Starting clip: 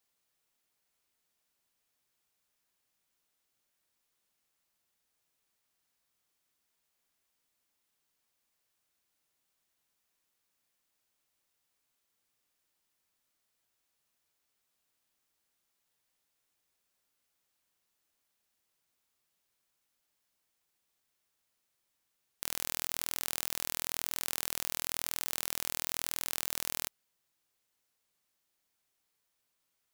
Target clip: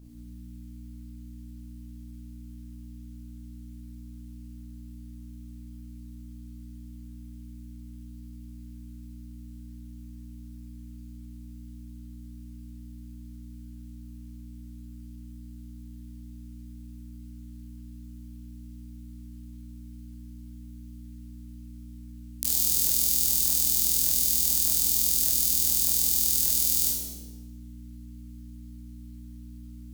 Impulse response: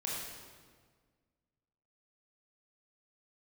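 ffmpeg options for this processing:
-filter_complex "[0:a]highshelf=frequency=2000:gain=9.5,acrossover=split=640|4000[link_01][link_02][link_03];[link_02]acompressor=threshold=-55dB:ratio=12[link_04];[link_01][link_04][link_03]amix=inputs=3:normalize=0,aeval=exprs='val(0)+0.00447*(sin(2*PI*60*n/s)+sin(2*PI*2*60*n/s)/2+sin(2*PI*3*60*n/s)/3+sin(2*PI*4*60*n/s)/4+sin(2*PI*5*60*n/s)/5)':channel_layout=same[link_05];[1:a]atrim=start_sample=2205,asetrate=57330,aresample=44100[link_06];[link_05][link_06]afir=irnorm=-1:irlink=0,volume=5dB"

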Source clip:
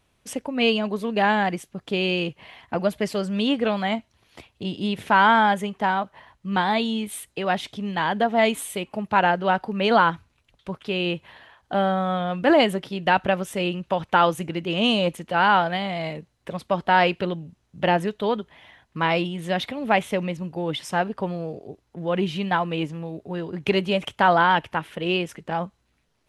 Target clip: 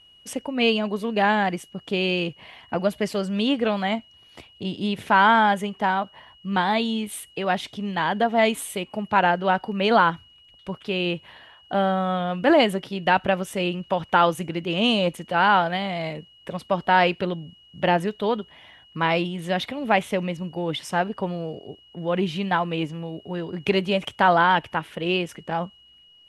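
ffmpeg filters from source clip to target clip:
ffmpeg -i in.wav -af "aeval=exprs='val(0)+0.00282*sin(2*PI*2900*n/s)':channel_layout=same" out.wav

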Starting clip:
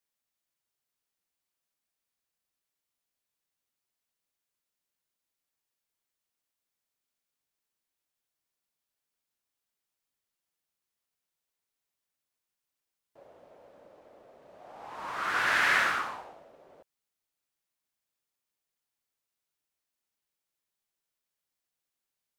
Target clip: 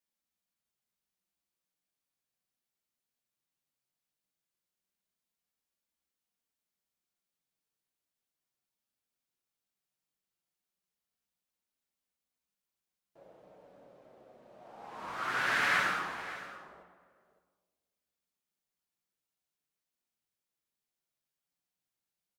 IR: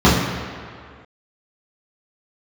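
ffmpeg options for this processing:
-filter_complex "[0:a]flanger=delay=3.3:depth=5.5:regen=-47:speed=0.17:shape=triangular,aecho=1:1:563:0.178,asplit=2[link_01][link_02];[1:a]atrim=start_sample=2205[link_03];[link_02][link_03]afir=irnorm=-1:irlink=0,volume=-35.5dB[link_04];[link_01][link_04]amix=inputs=2:normalize=0"

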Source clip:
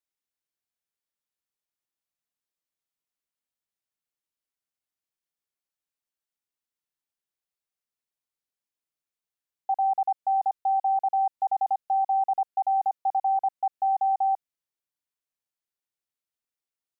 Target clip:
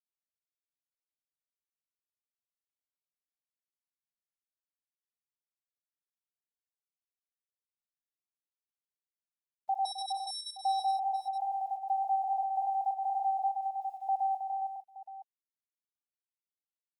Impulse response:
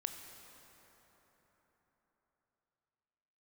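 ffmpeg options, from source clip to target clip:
-filter_complex "[0:a]bass=frequency=250:gain=7,treble=frequency=4000:gain=-6,dynaudnorm=framelen=410:gausssize=13:maxgain=8.5dB,asettb=1/sr,asplit=3[link_01][link_02][link_03];[link_01]atrim=end=13.574[link_04];[link_02]atrim=start=13.57:end=14.09,asetpts=PTS-STARTPTS,afade=type=in:duration=0.004:curve=qsin,afade=type=out:start_time=0.516:duration=0.004:curve=qsin,aderivative[link_05];[link_03]atrim=start=14.086[link_06];[link_04][link_05]acrossfade=duration=0.004:curve1=hsin:curve2=qsin[link_07];[link_07][link_06]acrossfade=duration=0.004:curve1=qsin:curve2=hsin,acrusher=bits=7:mode=log:mix=0:aa=0.000001,alimiter=limit=-18dB:level=0:latency=1:release=350,asettb=1/sr,asplit=3[link_08][link_09][link_10];[link_08]atrim=end=9.854[link_11];[link_09]atrim=start=9.85:end=10.53,asetpts=PTS-STARTPTS,afade=type=in:duration=0.004:curve=qsin,afade=type=out:start_time=0.676:duration=0.004:curve=qsin,aeval=exprs='(mod(16.8*val(0)+1,2)-1)/16.8':channel_layout=same[link_12];[link_10]atrim=start=10.526[link_13];[link_11][link_12]acrossfade=duration=0.004:curve1=hsin:curve2=qsin[link_14];[link_14][link_13]acrossfade=duration=0.004:curve1=qsin:curve2=hsin,asettb=1/sr,asplit=3[link_15][link_16][link_17];[link_15]atrim=end=11.204[link_18];[link_16]atrim=start=11.2:end=11.9,asetpts=PTS-STARTPTS,afade=type=in:duration=0.004:curve=qsin,afade=type=out:start_time=0.696:duration=0.004:curve=qsin,acompressor=threshold=-25dB:ratio=3[link_19];[link_17]atrim=start=11.896[link_20];[link_18][link_19]acrossfade=duration=0.004:curve1=hsin:curve2=qsin[link_21];[link_21][link_20]acrossfade=duration=0.004:curve1=qsin:curve2=hsin,afftfilt=real='re*gte(hypot(re,im),0.0708)':imag='im*gte(hypot(re,im),0.0708)':win_size=1024:overlap=0.75,acrusher=bits=10:mix=0:aa=0.000001,aecho=1:1:65|166|319|412|454|871:0.266|0.251|0.376|0.376|0.251|0.15,volume=-7.5dB"

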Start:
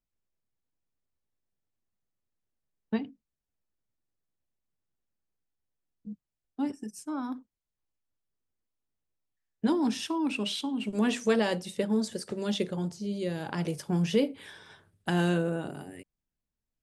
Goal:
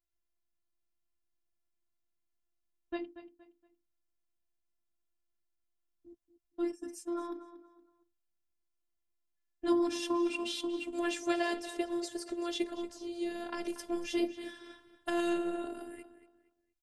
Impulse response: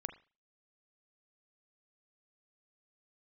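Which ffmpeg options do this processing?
-filter_complex "[0:a]asplit=2[link_01][link_02];[link_02]adelay=234,lowpass=frequency=4600:poles=1,volume=-13dB,asplit=2[link_03][link_04];[link_04]adelay=234,lowpass=frequency=4600:poles=1,volume=0.33,asplit=2[link_05][link_06];[link_06]adelay=234,lowpass=frequency=4600:poles=1,volume=0.33[link_07];[link_01][link_03][link_05][link_07]amix=inputs=4:normalize=0,afftfilt=real='hypot(re,im)*cos(PI*b)':imag='0':win_size=512:overlap=0.75"

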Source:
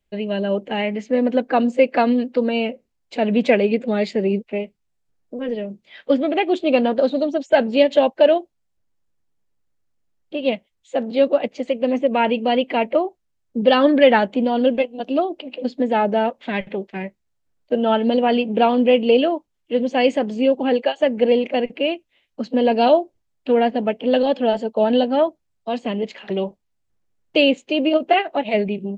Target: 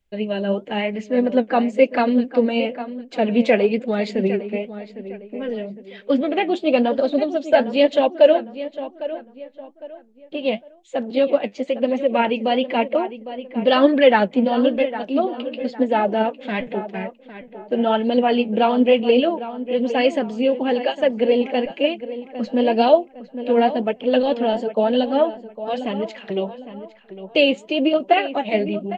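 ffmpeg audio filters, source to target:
ffmpeg -i in.wav -filter_complex "[0:a]asplit=2[link_01][link_02];[link_02]adelay=806,lowpass=frequency=2700:poles=1,volume=-12.5dB,asplit=2[link_03][link_04];[link_04]adelay=806,lowpass=frequency=2700:poles=1,volume=0.34,asplit=2[link_05][link_06];[link_06]adelay=806,lowpass=frequency=2700:poles=1,volume=0.34[link_07];[link_01][link_03][link_05][link_07]amix=inputs=4:normalize=0,flanger=delay=0.4:depth=9.8:regen=57:speed=1:shape=triangular,volume=3.5dB" out.wav

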